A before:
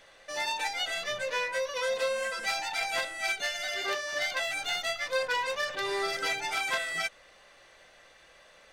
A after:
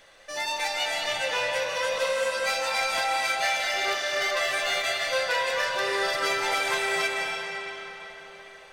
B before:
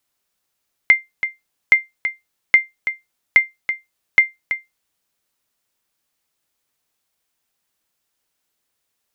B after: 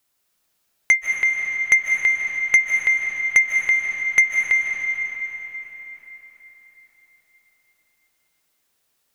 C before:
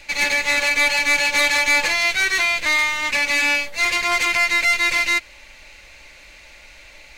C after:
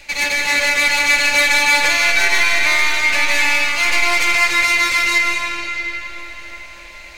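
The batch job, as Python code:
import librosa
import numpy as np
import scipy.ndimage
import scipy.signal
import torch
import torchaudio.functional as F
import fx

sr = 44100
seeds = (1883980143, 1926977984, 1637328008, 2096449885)

y = fx.high_shelf(x, sr, hz=8200.0, db=3.5)
y = 10.0 ** (-10.0 / 20.0) * np.tanh(y / 10.0 ** (-10.0 / 20.0))
y = fx.rev_freeverb(y, sr, rt60_s=4.5, hf_ratio=0.75, predelay_ms=115, drr_db=-0.5)
y = y * 10.0 ** (1.5 / 20.0)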